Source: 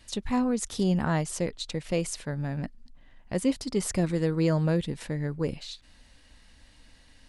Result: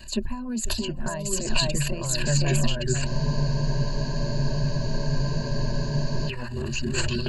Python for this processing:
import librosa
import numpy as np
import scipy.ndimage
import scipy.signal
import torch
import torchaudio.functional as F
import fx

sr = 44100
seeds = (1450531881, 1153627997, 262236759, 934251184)

y = fx.low_shelf(x, sr, hz=66.0, db=7.0)
y = fx.transient(y, sr, attack_db=-3, sustain_db=12)
y = y + 10.0 ** (-9.5 / 20.0) * np.pad(y, (int(493 * sr / 1000.0), 0))[:len(y)]
y = fx.dereverb_blind(y, sr, rt60_s=0.56)
y = fx.small_body(y, sr, hz=(720.0, 3600.0), ring_ms=45, db=7)
y = fx.over_compress(y, sr, threshold_db=-29.0, ratio=-0.5)
y = fx.echo_pitch(y, sr, ms=676, semitones=-4, count=3, db_per_echo=-3.0)
y = fx.ripple_eq(y, sr, per_octave=1.4, db=17)
y = fx.spec_freeze(y, sr, seeds[0], at_s=3.09, hold_s=3.19)